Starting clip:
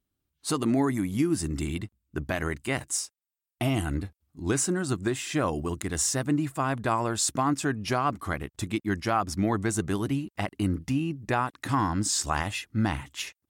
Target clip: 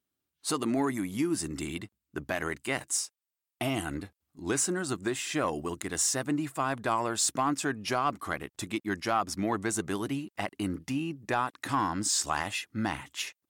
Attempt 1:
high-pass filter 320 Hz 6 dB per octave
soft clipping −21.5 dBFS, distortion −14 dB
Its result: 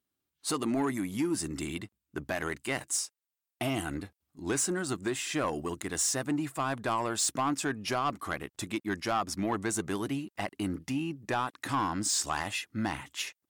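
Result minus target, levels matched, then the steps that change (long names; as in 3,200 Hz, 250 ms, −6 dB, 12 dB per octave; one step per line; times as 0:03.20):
soft clipping: distortion +8 dB
change: soft clipping −15.5 dBFS, distortion −22 dB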